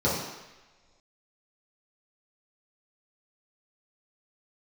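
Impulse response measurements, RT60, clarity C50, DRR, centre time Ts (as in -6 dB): no single decay rate, 1.5 dB, -9.0 dB, 61 ms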